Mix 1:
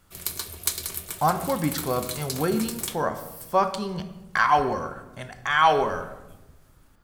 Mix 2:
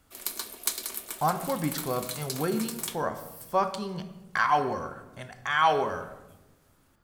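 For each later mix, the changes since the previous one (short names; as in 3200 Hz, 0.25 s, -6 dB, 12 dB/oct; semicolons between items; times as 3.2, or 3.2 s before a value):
speech -4.0 dB; background: add rippled Chebyshev high-pass 200 Hz, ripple 3 dB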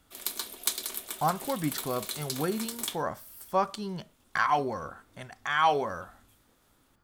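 background: add bell 3500 Hz +6 dB 0.32 oct; reverb: off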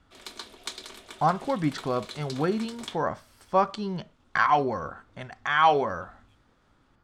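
speech +4.5 dB; master: add air absorption 110 m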